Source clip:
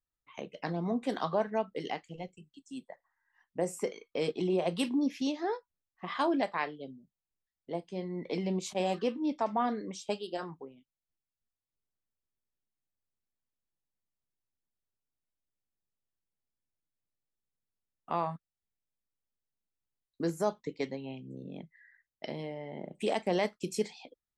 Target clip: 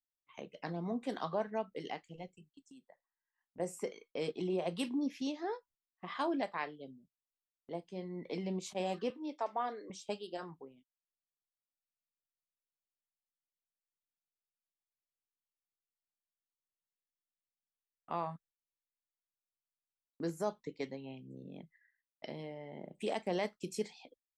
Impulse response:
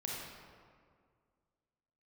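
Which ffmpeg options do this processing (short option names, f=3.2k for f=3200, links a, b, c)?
-filter_complex "[0:a]agate=range=-13dB:threshold=-58dB:ratio=16:detection=peak,asettb=1/sr,asplit=3[a][b][c];[a]atrim=end=2.654[d];[b]atrim=start=2.65:end=3.6,asetpts=PTS-STARTPTS,afade=t=in:d=0.004:c=qsin,afade=t=out:st=0.946:d=0.004:c=qsin,acompressor=threshold=-50dB:ratio=6[e];[c]atrim=start=3.596[f];[d][e]acrossfade=d=0.004:c1=hsin:c2=qsin[g];[g][f]acrossfade=d=0.004:c1=qsin:c2=hsin,asettb=1/sr,asplit=3[h][i][j];[h]atrim=end=9.104[k];[i]atrim=start=9.1:end=9.9,asetpts=PTS-STARTPTS,afade=t=in:d=0.004:c=qsin,afade=t=out:st=0.796:d=0.004:c=qsin,highpass=f=330:w=0.5412,highpass=f=330:w=1.3066[l];[j]atrim=start=9.896[m];[k][l]acrossfade=d=0.004:c1=hsin:c2=qsin[n];[n][m]acrossfade=d=0.004:c1=qsin:c2=hsin,volume=-5.5dB"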